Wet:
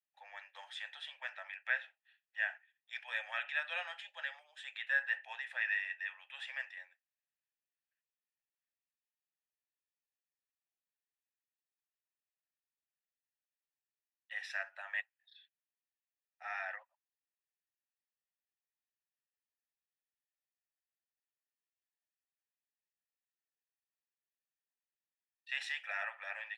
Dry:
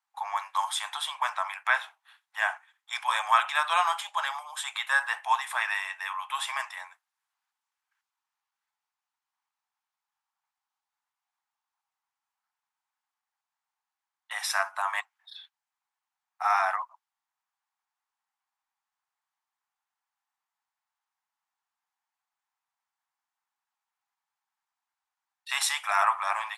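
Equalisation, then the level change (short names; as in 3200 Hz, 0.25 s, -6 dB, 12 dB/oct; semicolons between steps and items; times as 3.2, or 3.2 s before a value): bell 4700 Hz +8 dB 2.1 oct; dynamic EQ 1400 Hz, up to +6 dB, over -35 dBFS, Q 0.77; vowel filter e; -4.5 dB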